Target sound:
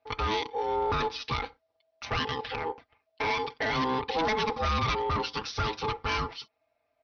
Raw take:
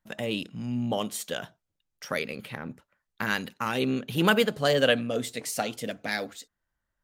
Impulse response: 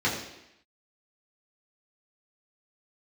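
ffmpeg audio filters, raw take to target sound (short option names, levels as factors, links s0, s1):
-af "aecho=1:1:5.4:0.93,acompressor=threshold=0.0708:ratio=2.5,aresample=11025,volume=23.7,asoftclip=hard,volume=0.0422,aresample=44100,aeval=exprs='val(0)*sin(2*PI*650*n/s)':c=same,volume=1.88"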